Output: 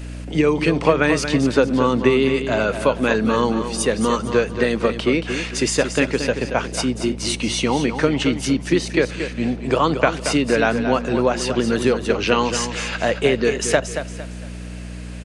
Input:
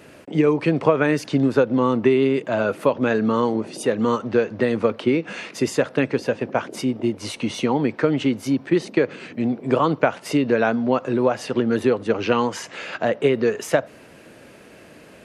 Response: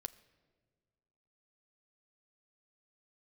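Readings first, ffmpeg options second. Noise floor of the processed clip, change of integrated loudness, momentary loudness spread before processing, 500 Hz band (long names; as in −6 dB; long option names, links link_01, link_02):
−32 dBFS, +1.5 dB, 7 LU, +1.0 dB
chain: -filter_complex "[0:a]aeval=exprs='val(0)+0.0316*(sin(2*PI*60*n/s)+sin(2*PI*2*60*n/s)/2+sin(2*PI*3*60*n/s)/3+sin(2*PI*4*60*n/s)/4+sin(2*PI*5*60*n/s)/5)':channel_layout=same,highshelf=frequency=2400:gain=11.5,asplit=2[link_01][link_02];[link_02]aecho=0:1:228|456|684|912:0.355|0.117|0.0386|0.0128[link_03];[link_01][link_03]amix=inputs=2:normalize=0,aresample=22050,aresample=44100"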